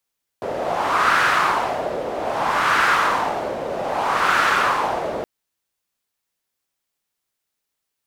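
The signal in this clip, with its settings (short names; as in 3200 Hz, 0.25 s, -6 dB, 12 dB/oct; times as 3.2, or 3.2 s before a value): wind-like swept noise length 4.82 s, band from 550 Hz, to 1400 Hz, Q 2.8, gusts 3, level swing 9.5 dB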